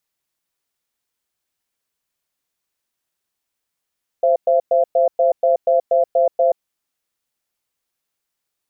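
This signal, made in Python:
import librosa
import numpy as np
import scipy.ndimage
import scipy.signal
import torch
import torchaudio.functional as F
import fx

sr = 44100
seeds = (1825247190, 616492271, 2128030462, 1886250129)

y = fx.cadence(sr, length_s=2.36, low_hz=523.0, high_hz=678.0, on_s=0.13, off_s=0.11, level_db=-14.5)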